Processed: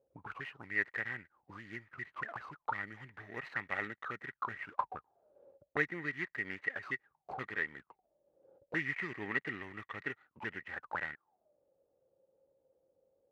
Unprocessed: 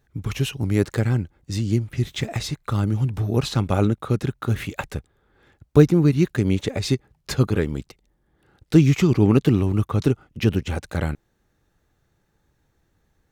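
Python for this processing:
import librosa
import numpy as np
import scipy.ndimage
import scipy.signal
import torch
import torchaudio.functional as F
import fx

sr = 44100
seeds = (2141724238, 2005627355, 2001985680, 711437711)

y = scipy.ndimage.median_filter(x, 25, mode='constant')
y = fx.auto_wah(y, sr, base_hz=530.0, top_hz=1900.0, q=19.0, full_db=-20.5, direction='up')
y = F.gain(torch.from_numpy(y), 15.5).numpy()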